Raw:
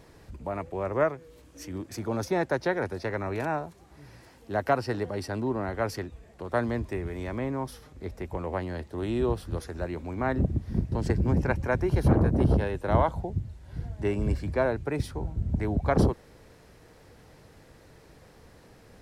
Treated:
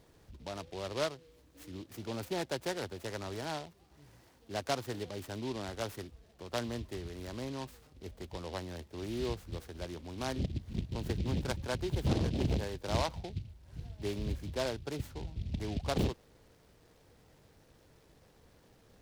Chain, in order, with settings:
short delay modulated by noise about 3,200 Hz, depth 0.083 ms
level −9 dB

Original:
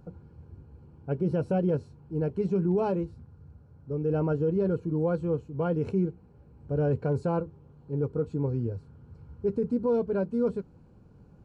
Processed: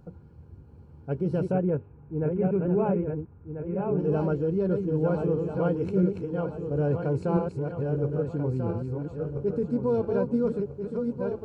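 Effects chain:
feedback delay that plays each chunk backwards 670 ms, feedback 61%, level −4 dB
0:01.52–0:03.99: Butterworth low-pass 2,600 Hz 48 dB per octave

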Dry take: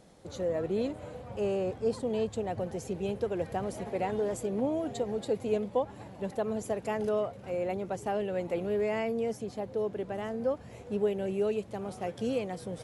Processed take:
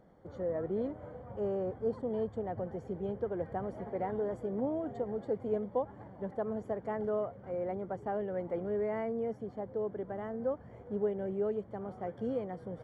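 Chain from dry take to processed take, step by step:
Savitzky-Golay smoothing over 41 samples
level −3.5 dB

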